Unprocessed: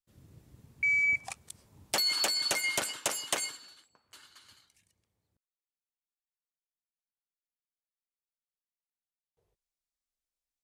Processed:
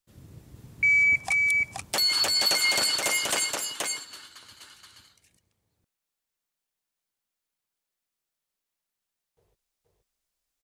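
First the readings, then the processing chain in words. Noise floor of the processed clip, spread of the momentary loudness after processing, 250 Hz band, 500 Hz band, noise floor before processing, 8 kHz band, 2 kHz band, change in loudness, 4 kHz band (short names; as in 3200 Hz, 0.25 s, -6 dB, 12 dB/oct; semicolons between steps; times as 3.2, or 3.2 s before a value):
under -85 dBFS, 10 LU, +5.5 dB, +4.5 dB, under -85 dBFS, +6.0 dB, +7.5 dB, +6.0 dB, +7.5 dB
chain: limiter -24.5 dBFS, peak gain reduction 8 dB; echo 0.476 s -3 dB; gain +8 dB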